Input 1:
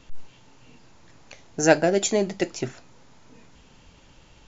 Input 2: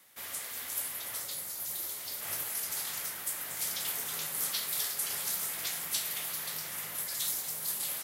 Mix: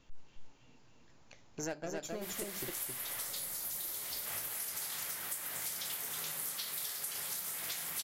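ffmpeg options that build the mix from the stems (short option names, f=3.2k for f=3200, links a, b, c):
-filter_complex "[0:a]aeval=exprs='0.631*(cos(1*acos(clip(val(0)/0.631,-1,1)))-cos(1*PI/2))+0.0398*(cos(8*acos(clip(val(0)/0.631,-1,1)))-cos(8*PI/2))':c=same,volume=-12.5dB,asplit=2[a][b];[b]volume=-3.5dB[c];[1:a]adelay=2050,volume=2dB[d];[c]aecho=0:1:266:1[e];[a][d][e]amix=inputs=3:normalize=0,acompressor=threshold=-36dB:ratio=10"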